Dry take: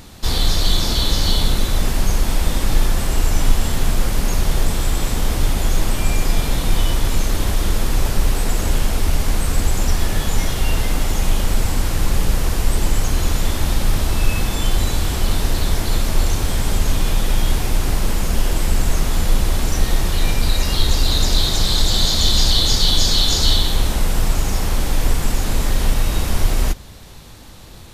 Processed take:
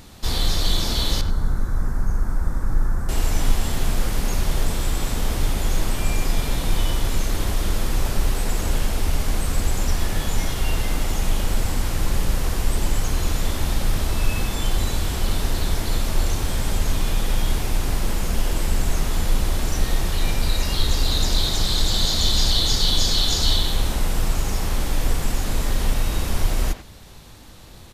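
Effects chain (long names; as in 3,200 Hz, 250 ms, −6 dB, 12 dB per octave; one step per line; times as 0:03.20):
0:01.21–0:03.09: drawn EQ curve 120 Hz 0 dB, 630 Hz −9 dB, 1,500 Hz −1 dB, 2,900 Hz −29 dB, 6,000 Hz −15 dB
far-end echo of a speakerphone 90 ms, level −9 dB
level −4 dB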